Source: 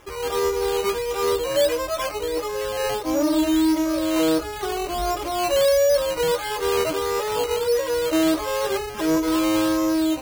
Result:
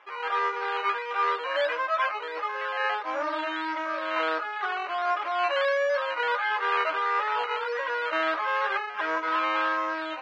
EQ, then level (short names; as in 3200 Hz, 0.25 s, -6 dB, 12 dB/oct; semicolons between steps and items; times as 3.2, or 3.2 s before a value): dynamic EQ 1500 Hz, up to +8 dB, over -43 dBFS, Q 1.6; Butterworth band-pass 1500 Hz, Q 0.71; air absorption 78 m; 0.0 dB